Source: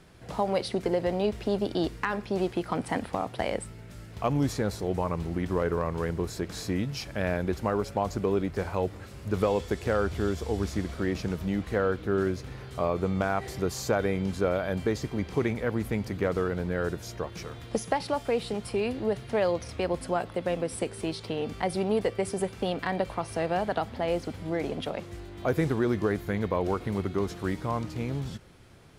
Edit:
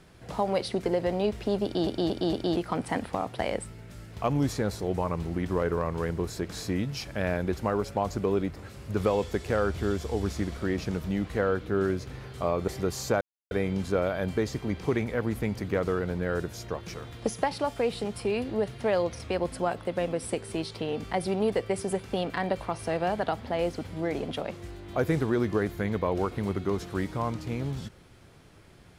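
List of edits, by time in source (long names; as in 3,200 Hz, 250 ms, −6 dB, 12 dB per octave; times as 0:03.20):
0:01.64: stutter in place 0.23 s, 4 plays
0:08.56–0:08.93: remove
0:13.05–0:13.47: remove
0:14.00: splice in silence 0.30 s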